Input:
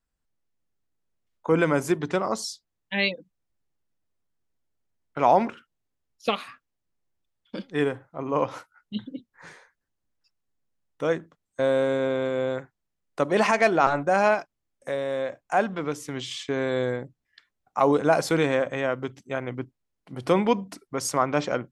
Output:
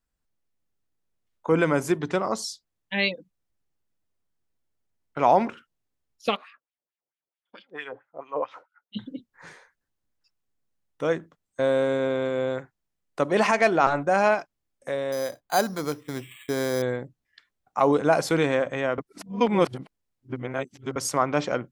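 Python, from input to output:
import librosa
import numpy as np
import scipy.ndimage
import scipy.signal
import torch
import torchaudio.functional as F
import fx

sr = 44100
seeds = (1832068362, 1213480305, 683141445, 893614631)

y = fx.wah_lfo(x, sr, hz=4.5, low_hz=470.0, high_hz=3200.0, q=2.2, at=(6.35, 8.95), fade=0.02)
y = fx.resample_bad(y, sr, factor=8, down='filtered', up='hold', at=(15.12, 16.82))
y = fx.edit(y, sr, fx.reverse_span(start_s=18.98, length_s=1.98), tone=tone)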